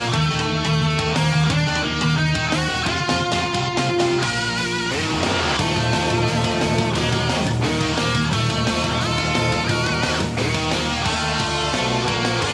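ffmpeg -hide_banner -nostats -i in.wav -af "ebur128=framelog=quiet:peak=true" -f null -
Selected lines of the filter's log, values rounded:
Integrated loudness:
  I:         -19.9 LUFS
  Threshold: -29.9 LUFS
Loudness range:
  LRA:         0.7 LU
  Threshold: -39.9 LUFS
  LRA low:   -20.2 LUFS
  LRA high:  -19.5 LUFS
True peak:
  Peak:       -5.6 dBFS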